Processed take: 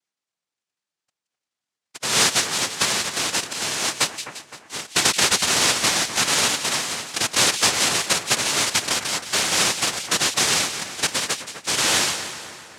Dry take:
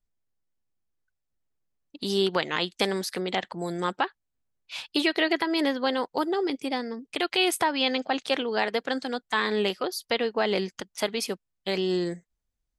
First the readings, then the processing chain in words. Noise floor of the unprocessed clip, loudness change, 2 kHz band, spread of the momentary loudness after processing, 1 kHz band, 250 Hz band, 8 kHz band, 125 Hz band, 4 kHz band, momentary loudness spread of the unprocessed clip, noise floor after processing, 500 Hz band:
-82 dBFS, +7.5 dB, +7.5 dB, 9 LU, +3.5 dB, -5.0 dB, +22.5 dB, +4.0 dB, +10.0 dB, 8 LU, under -85 dBFS, -4.0 dB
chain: noise-vocoded speech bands 1; two-band feedback delay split 2.2 kHz, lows 257 ms, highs 173 ms, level -10.5 dB; trim +5 dB

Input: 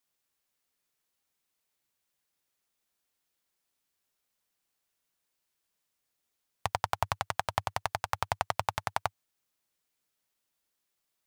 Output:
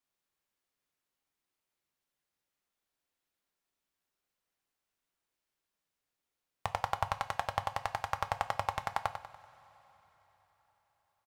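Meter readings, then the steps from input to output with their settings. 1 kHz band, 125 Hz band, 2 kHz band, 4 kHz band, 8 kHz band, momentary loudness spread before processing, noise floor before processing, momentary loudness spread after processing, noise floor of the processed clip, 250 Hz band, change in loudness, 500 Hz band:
-1.5 dB, -4.0 dB, -3.0 dB, -5.0 dB, -7.5 dB, 4 LU, -82 dBFS, 6 LU, under -85 dBFS, -3.0 dB, -2.5 dB, -2.5 dB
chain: treble shelf 3.8 kHz -7.5 dB; on a send: feedback delay 96 ms, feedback 43%, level -9 dB; on the sum: two-slope reverb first 0.33 s, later 4.5 s, from -19 dB, DRR 10 dB; trim -2.5 dB

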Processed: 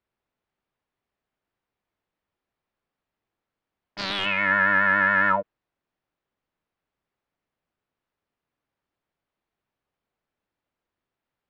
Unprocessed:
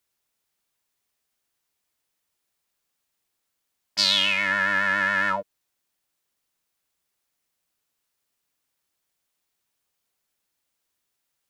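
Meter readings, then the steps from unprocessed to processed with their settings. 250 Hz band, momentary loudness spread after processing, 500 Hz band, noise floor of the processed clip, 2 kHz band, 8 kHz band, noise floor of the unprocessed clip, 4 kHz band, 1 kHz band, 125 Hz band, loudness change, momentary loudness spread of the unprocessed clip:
+4.0 dB, 9 LU, +3.5 dB, under -85 dBFS, +2.0 dB, under -15 dB, -79 dBFS, -9.5 dB, +4.0 dB, +4.0 dB, +1.0 dB, 9 LU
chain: dynamic bell 1.5 kHz, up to +5 dB, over -36 dBFS, Q 0.95; integer overflow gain 7.5 dB; tape spacing loss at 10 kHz 41 dB; trim +5 dB

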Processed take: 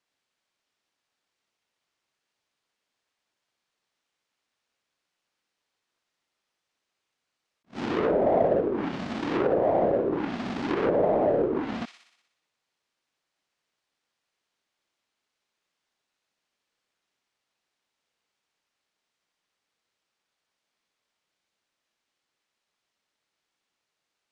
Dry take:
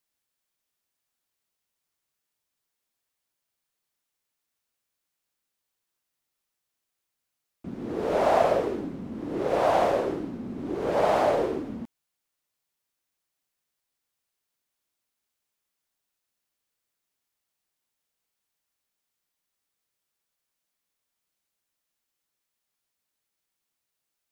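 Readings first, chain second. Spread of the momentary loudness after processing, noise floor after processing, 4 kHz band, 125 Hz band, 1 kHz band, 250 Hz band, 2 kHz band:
10 LU, -84 dBFS, -1.5 dB, +2.5 dB, -3.5 dB, +3.5 dB, -1.0 dB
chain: square wave that keeps the level; bass shelf 120 Hz -11.5 dB; feedback echo behind a high-pass 61 ms, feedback 61%, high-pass 2.5 kHz, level -5 dB; low-pass that closes with the level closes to 520 Hz, closed at -19.5 dBFS; distance through air 87 m; attacks held to a fixed rise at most 340 dB/s; trim +2 dB

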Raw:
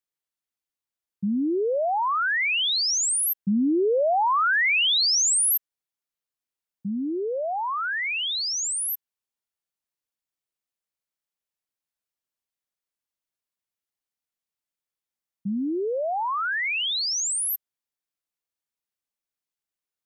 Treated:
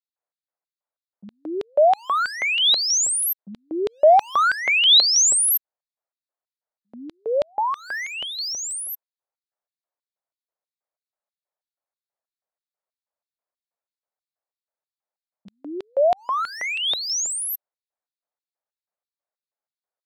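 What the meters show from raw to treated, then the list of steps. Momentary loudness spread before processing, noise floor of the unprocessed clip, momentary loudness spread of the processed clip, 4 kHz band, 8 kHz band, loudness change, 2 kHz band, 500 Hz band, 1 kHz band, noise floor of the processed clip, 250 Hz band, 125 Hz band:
10 LU, under -85 dBFS, 17 LU, +5.0 dB, +3.0 dB, +4.0 dB, -0.5 dB, +5.0 dB, +3.5 dB, under -85 dBFS, -9.5 dB, under -10 dB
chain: local Wiener filter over 15 samples; LFO high-pass square 3.1 Hz 610–3700 Hz; trim +3.5 dB

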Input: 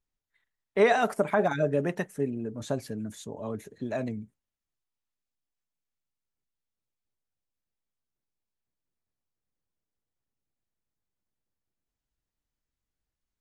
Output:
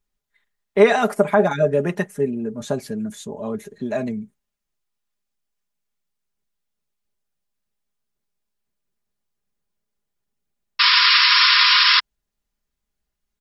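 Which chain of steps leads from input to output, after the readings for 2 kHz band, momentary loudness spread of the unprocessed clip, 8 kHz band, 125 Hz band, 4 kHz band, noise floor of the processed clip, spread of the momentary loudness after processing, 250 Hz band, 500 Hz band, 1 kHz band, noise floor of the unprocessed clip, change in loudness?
+16.5 dB, 14 LU, +6.5 dB, +6.0 dB, +31.5 dB, -81 dBFS, 19 LU, +7.5 dB, +8.0 dB, +10.0 dB, under -85 dBFS, +13.5 dB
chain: painted sound noise, 10.79–12.00 s, 960–5500 Hz -21 dBFS; comb 4.9 ms, depth 55%; trim +5.5 dB

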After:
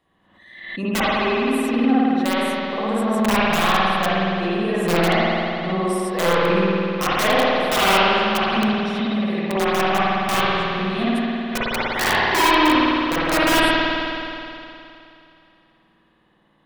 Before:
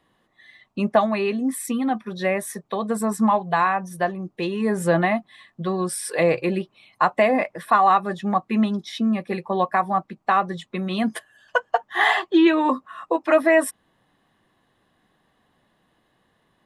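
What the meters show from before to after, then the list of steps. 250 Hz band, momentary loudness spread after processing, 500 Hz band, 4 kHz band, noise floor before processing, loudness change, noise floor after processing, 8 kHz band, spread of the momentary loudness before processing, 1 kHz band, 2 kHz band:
+2.5 dB, 8 LU, +1.5 dB, +12.5 dB, -67 dBFS, +3.0 dB, -60 dBFS, +3.0 dB, 10 LU, +2.0 dB, +5.0 dB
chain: integer overflow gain 12 dB; spring tank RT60 2.8 s, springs 52 ms, chirp 35 ms, DRR -10 dB; swell ahead of each attack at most 62 dB/s; trim -6.5 dB

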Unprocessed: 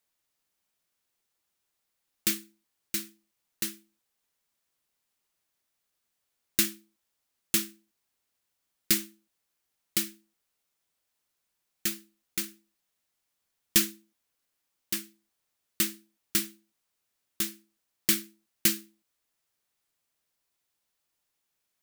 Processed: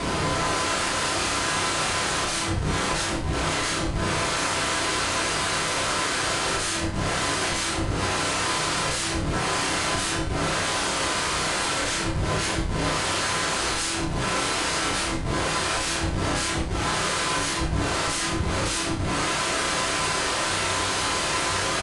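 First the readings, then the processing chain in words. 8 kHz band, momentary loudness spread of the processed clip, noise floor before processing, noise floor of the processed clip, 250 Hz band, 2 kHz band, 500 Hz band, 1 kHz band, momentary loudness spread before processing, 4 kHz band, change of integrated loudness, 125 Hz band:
+8.5 dB, 2 LU, -81 dBFS, -27 dBFS, +11.5 dB, +17.5 dB, +21.5 dB, +31.0 dB, 11 LU, +13.0 dB, +5.5 dB, +22.5 dB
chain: spectral levelling over time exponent 0.6; high-pass 48 Hz 24 dB/octave; high-order bell 620 Hz +11 dB 2.9 oct; harmonic-percussive split percussive +9 dB; tone controls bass -14 dB, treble +3 dB; in parallel at -1.5 dB: compression 12:1, threshold -32 dBFS, peak gain reduction 27.5 dB; on the sum: slow attack 698 ms; level rider gain up to 4.5 dB; Schmitt trigger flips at -36 dBFS; flutter echo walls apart 5.4 m, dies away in 0.27 s; gated-style reverb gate 140 ms falling, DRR -5 dB; resampled via 22.05 kHz; trim +5 dB

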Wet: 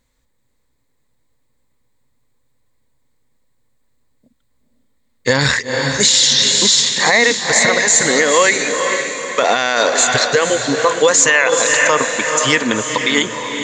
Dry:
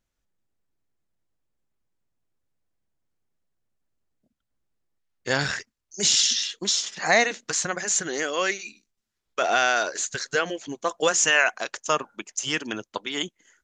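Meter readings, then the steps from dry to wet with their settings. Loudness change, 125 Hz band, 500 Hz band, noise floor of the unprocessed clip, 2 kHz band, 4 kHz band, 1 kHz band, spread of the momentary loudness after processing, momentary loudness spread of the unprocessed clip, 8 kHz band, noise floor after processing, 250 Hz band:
+11.0 dB, +13.5 dB, +12.5 dB, -81 dBFS, +10.5 dB, +11.5 dB, +9.5 dB, 7 LU, 14 LU, +11.5 dB, -63 dBFS, +13.0 dB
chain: rippled EQ curve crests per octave 1, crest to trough 9 dB; echo that smears into a reverb 474 ms, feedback 44%, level -7.5 dB; loudness maximiser +14.5 dB; trim -1 dB

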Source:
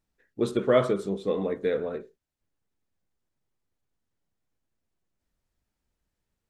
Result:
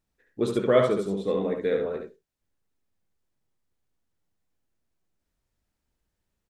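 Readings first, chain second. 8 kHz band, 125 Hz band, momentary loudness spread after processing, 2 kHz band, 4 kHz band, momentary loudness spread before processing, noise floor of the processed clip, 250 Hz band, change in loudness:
no reading, +1.0 dB, 12 LU, +1.0 dB, +1.0 dB, 9 LU, -82 dBFS, +1.0 dB, +1.5 dB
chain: delay 71 ms -5 dB

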